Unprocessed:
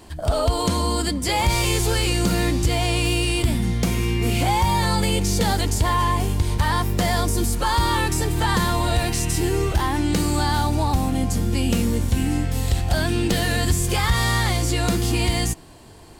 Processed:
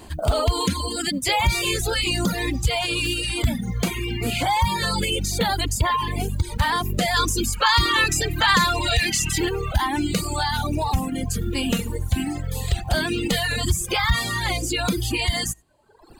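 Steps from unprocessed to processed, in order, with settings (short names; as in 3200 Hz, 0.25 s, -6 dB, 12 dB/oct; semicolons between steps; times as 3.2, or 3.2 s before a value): dynamic EQ 2900 Hz, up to +4 dB, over -35 dBFS, Q 0.83; in parallel at -2.5 dB: limiter -16.5 dBFS, peak gain reduction 8.5 dB; on the sum: reverb removal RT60 1.3 s; short-mantissa float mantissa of 4-bit; notch 5500 Hz, Q 7.2; 11.35–12.11 flutter echo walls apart 11.3 m, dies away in 0.4 s; on a send at -21.5 dB: reverb, pre-delay 60 ms; 7.15–9.49 on the sum: spectral gain 1000–7700 Hz +6 dB; reverb removal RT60 1.2 s; gain -2 dB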